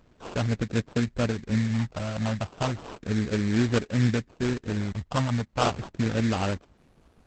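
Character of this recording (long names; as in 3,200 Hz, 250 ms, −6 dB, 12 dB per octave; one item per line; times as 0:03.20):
a quantiser's noise floor 12 bits, dither none
phaser sweep stages 4, 0.33 Hz, lowest notch 380–1,500 Hz
aliases and images of a low sample rate 2,000 Hz, jitter 20%
Opus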